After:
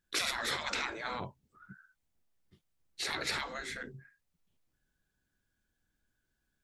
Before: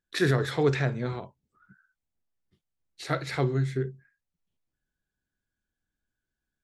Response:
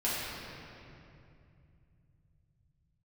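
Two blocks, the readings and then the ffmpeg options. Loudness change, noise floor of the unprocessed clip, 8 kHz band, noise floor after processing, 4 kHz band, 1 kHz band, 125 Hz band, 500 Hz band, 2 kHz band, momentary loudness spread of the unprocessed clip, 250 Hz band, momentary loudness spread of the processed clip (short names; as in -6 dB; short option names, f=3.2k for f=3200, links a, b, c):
-7.5 dB, under -85 dBFS, +5.0 dB, -83 dBFS, +3.0 dB, -3.0 dB, -24.0 dB, -15.5 dB, -2.0 dB, 11 LU, -17.0 dB, 15 LU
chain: -af "afftfilt=real='re*lt(hypot(re,im),0.0562)':imag='im*lt(hypot(re,im),0.0562)':win_size=1024:overlap=0.75,acontrast=27,adynamicequalizer=threshold=0.00398:dfrequency=530:dqfactor=0.95:tfrequency=530:tqfactor=0.95:attack=5:release=100:ratio=0.375:range=1.5:mode=cutabove:tftype=bell"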